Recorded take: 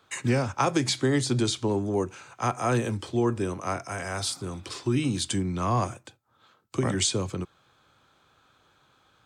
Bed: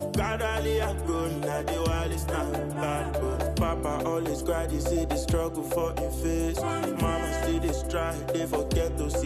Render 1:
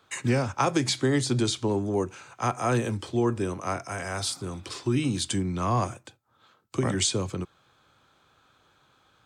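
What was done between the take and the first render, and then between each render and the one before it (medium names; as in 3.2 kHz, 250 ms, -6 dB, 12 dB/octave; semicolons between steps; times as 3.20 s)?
no audible change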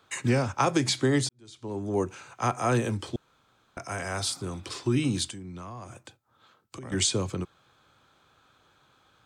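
1.29–1.99 s: fade in quadratic; 3.16–3.77 s: room tone; 5.30–6.92 s: compression 5:1, threshold -39 dBFS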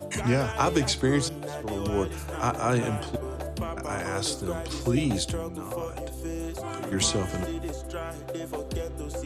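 add bed -6 dB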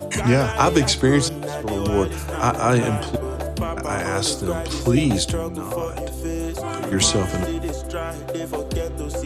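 trim +7 dB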